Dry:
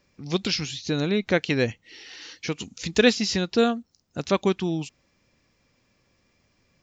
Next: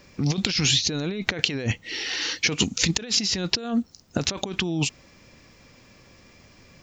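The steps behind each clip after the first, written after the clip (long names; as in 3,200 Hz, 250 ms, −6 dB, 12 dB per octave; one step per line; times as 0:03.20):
compressor whose output falls as the input rises −33 dBFS, ratio −1
level +7 dB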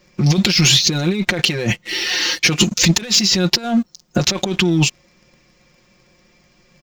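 comb filter 5.6 ms, depth 91%
leveller curve on the samples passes 2
level −1 dB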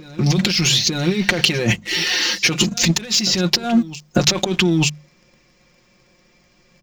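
mains-hum notches 50/100/150/200 Hz
speech leveller within 3 dB 0.5 s
backwards echo 896 ms −17 dB
level −1 dB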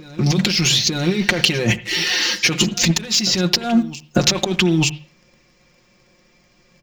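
convolution reverb, pre-delay 66 ms, DRR 16 dB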